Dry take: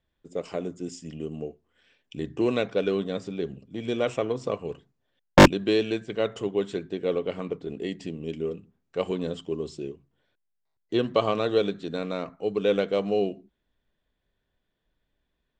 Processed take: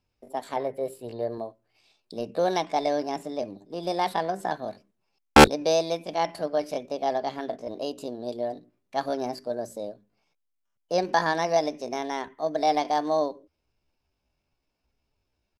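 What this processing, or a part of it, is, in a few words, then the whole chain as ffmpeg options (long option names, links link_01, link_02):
chipmunk voice: -filter_complex "[0:a]asetrate=66075,aresample=44100,atempo=0.66742,asettb=1/sr,asplit=3[link_01][link_02][link_03];[link_01]atrim=end=0.564[link_04];[link_02]atrim=start=0.56:end=1.38,asetpts=PTS-STARTPTS,afade=type=in:duration=0.004:curve=qsin,afade=type=out:start_time=0.816:duration=0.004:curve=qsin,equalizer=frequency=125:width_type=o:width=1:gain=9,equalizer=frequency=250:width_type=o:width=1:gain=-7,equalizer=frequency=500:width_type=o:width=1:gain=7,equalizer=frequency=2000:width_type=o:width=1:gain=8,equalizer=frequency=8000:width_type=o:width=1:gain=-9[link_05];[link_03]atrim=start=1.376[link_06];[link_04][link_05]acrossfade=duration=0.004:curve1=hsin:curve2=qsin[link_07];[link_07][link_06]acrossfade=duration=0.004:curve1=qsin:curve2=hsin"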